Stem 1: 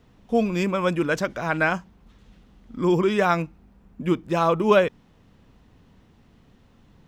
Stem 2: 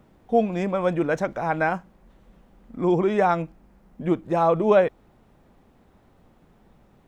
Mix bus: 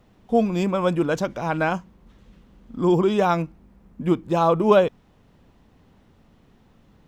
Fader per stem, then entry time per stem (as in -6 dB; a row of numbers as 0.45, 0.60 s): -2.0, -4.5 dB; 0.00, 0.00 s